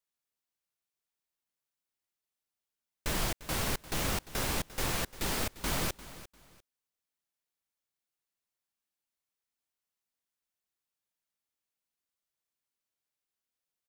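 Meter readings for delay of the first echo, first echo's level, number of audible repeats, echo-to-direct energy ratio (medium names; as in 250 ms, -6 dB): 348 ms, -16.5 dB, 2, -16.0 dB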